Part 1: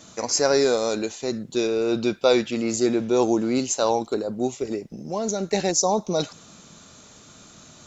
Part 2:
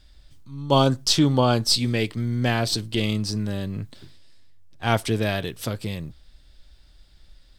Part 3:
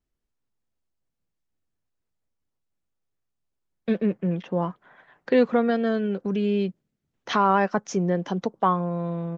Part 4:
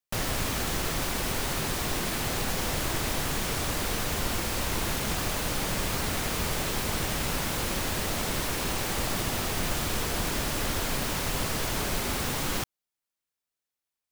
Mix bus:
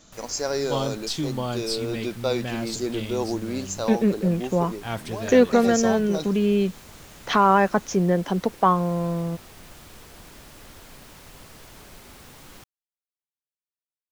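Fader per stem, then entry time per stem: -7.0, -9.5, +3.0, -16.5 dB; 0.00, 0.00, 0.00, 0.00 s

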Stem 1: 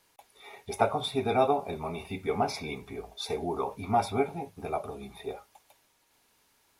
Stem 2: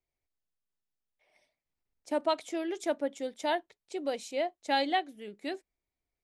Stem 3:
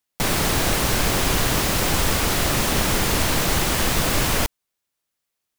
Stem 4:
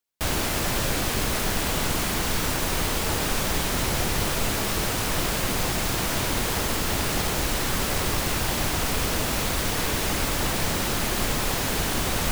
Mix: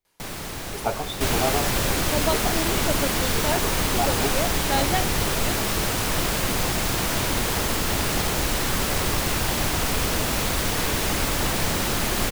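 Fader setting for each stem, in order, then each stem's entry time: -1.0, +2.5, -12.5, +1.5 dB; 0.05, 0.00, 0.00, 1.00 s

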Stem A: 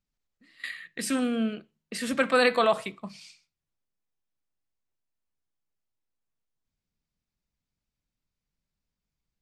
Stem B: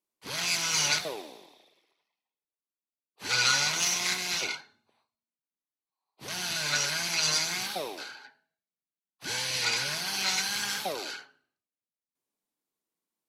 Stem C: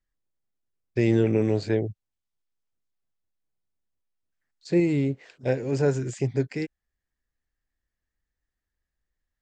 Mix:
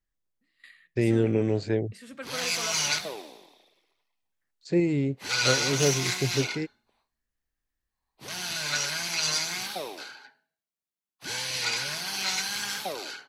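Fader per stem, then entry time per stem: -15.5, -0.5, -2.0 dB; 0.00, 2.00, 0.00 s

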